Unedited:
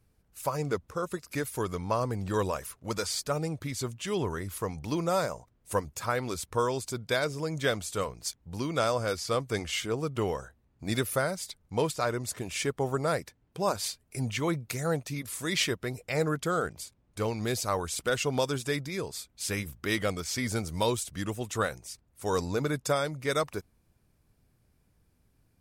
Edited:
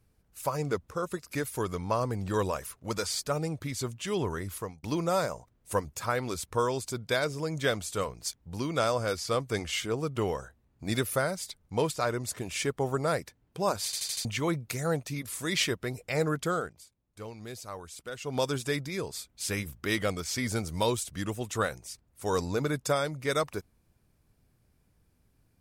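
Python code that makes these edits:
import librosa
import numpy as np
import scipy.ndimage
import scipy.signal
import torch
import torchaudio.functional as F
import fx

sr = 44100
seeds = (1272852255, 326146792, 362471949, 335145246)

y = fx.edit(x, sr, fx.fade_out_span(start_s=4.53, length_s=0.3),
    fx.stutter_over(start_s=13.85, slice_s=0.08, count=5),
    fx.fade_down_up(start_s=16.51, length_s=1.92, db=-11.5, fade_s=0.22), tone=tone)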